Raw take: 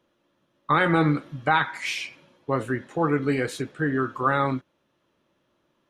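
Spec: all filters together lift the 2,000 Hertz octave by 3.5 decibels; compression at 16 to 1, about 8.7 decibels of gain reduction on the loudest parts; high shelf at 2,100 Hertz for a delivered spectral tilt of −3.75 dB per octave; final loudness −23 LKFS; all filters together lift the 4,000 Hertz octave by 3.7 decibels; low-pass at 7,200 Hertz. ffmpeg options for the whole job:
ffmpeg -i in.wav -af "lowpass=7200,equalizer=frequency=2000:width_type=o:gain=6.5,highshelf=frequency=2100:gain=-6.5,equalizer=frequency=4000:width_type=o:gain=8.5,acompressor=threshold=-23dB:ratio=16,volume=6.5dB" out.wav

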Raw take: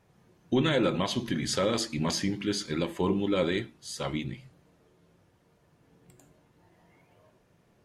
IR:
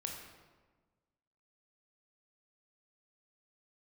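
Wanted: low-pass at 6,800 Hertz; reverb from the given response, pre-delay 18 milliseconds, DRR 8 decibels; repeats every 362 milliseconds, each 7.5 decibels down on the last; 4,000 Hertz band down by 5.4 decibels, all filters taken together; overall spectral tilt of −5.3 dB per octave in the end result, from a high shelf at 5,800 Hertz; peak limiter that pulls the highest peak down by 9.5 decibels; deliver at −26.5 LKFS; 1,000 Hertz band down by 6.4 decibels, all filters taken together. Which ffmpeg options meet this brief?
-filter_complex "[0:a]lowpass=6800,equalizer=frequency=1000:width_type=o:gain=-8,equalizer=frequency=4000:width_type=o:gain=-4,highshelf=frequency=5800:gain=-5,alimiter=level_in=1dB:limit=-24dB:level=0:latency=1,volume=-1dB,aecho=1:1:362|724|1086|1448|1810:0.422|0.177|0.0744|0.0312|0.0131,asplit=2[link_01][link_02];[1:a]atrim=start_sample=2205,adelay=18[link_03];[link_02][link_03]afir=irnorm=-1:irlink=0,volume=-7.5dB[link_04];[link_01][link_04]amix=inputs=2:normalize=0,volume=8dB"

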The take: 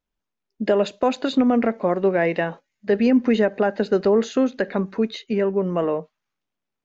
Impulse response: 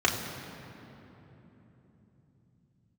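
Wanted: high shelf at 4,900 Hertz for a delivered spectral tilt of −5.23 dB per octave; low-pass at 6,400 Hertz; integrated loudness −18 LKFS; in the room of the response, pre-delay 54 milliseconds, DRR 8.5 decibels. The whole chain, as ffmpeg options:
-filter_complex "[0:a]lowpass=6400,highshelf=frequency=4900:gain=4,asplit=2[link_01][link_02];[1:a]atrim=start_sample=2205,adelay=54[link_03];[link_02][link_03]afir=irnorm=-1:irlink=0,volume=-22.5dB[link_04];[link_01][link_04]amix=inputs=2:normalize=0,volume=3dB"

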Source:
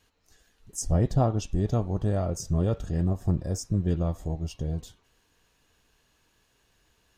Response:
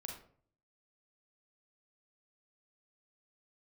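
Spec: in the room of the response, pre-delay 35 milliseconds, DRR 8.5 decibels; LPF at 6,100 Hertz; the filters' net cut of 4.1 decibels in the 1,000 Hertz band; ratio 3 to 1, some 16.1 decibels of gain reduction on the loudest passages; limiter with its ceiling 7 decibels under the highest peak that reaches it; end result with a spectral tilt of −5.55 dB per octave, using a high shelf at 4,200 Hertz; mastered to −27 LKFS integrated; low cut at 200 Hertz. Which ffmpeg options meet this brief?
-filter_complex "[0:a]highpass=200,lowpass=6100,equalizer=frequency=1000:width_type=o:gain=-6.5,highshelf=frequency=4200:gain=-4.5,acompressor=threshold=-46dB:ratio=3,alimiter=level_in=14dB:limit=-24dB:level=0:latency=1,volume=-14dB,asplit=2[link_01][link_02];[1:a]atrim=start_sample=2205,adelay=35[link_03];[link_02][link_03]afir=irnorm=-1:irlink=0,volume=-5.5dB[link_04];[link_01][link_04]amix=inputs=2:normalize=0,volume=22.5dB"

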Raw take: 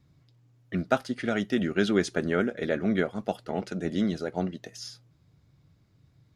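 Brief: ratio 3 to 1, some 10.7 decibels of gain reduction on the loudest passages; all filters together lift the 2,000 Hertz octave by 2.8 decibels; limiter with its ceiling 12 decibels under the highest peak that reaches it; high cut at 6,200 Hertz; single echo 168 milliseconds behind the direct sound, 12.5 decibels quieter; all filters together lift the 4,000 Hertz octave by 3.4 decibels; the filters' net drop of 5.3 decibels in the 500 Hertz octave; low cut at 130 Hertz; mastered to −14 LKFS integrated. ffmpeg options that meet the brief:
ffmpeg -i in.wav -af "highpass=130,lowpass=6200,equalizer=frequency=500:width_type=o:gain=-7.5,equalizer=frequency=2000:width_type=o:gain=3.5,equalizer=frequency=4000:width_type=o:gain=4,acompressor=threshold=-35dB:ratio=3,alimiter=level_in=7dB:limit=-24dB:level=0:latency=1,volume=-7dB,aecho=1:1:168:0.237,volume=28dB" out.wav

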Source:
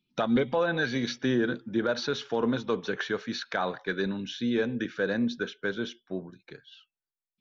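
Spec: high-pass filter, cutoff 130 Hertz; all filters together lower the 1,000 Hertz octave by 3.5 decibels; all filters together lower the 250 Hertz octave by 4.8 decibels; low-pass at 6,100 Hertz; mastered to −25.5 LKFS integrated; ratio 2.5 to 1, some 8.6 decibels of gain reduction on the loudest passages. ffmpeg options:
ffmpeg -i in.wav -af "highpass=130,lowpass=6100,equalizer=frequency=250:width_type=o:gain=-5,equalizer=frequency=1000:width_type=o:gain=-4.5,acompressor=threshold=-38dB:ratio=2.5,volume=14dB" out.wav

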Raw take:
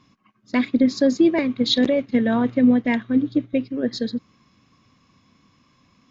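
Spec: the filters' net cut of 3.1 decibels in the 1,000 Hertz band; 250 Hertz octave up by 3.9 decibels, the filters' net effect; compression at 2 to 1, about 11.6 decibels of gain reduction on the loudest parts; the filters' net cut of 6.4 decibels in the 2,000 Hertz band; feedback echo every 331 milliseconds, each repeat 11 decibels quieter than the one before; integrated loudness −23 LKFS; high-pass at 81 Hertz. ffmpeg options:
ffmpeg -i in.wav -af "highpass=81,equalizer=frequency=250:width_type=o:gain=4.5,equalizer=frequency=1000:width_type=o:gain=-3.5,equalizer=frequency=2000:width_type=o:gain=-6.5,acompressor=threshold=-30dB:ratio=2,aecho=1:1:331|662|993:0.282|0.0789|0.0221,volume=4dB" out.wav

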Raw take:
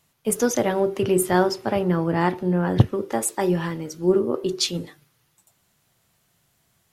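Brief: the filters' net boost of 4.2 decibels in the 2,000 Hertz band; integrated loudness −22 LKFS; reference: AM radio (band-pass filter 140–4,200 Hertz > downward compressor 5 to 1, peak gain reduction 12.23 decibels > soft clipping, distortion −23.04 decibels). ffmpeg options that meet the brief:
ffmpeg -i in.wav -af "highpass=140,lowpass=4200,equalizer=frequency=2000:width_type=o:gain=5.5,acompressor=threshold=-25dB:ratio=5,asoftclip=threshold=-16.5dB,volume=8.5dB" out.wav

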